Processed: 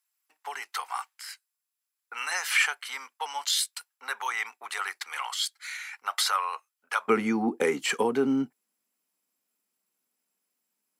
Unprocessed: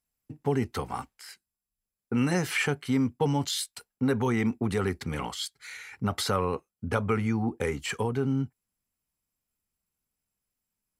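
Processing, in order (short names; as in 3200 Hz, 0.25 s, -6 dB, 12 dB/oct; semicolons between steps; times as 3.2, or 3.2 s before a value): HPF 940 Hz 24 dB/oct, from 7.08 s 230 Hz; gain +5 dB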